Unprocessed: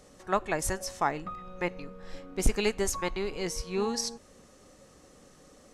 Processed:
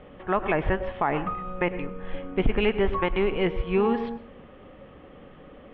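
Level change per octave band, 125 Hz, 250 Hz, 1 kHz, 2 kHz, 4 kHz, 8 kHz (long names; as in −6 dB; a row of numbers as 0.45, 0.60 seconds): +7.0 dB, +7.5 dB, +4.5 dB, +5.0 dB, −1.0 dB, below −40 dB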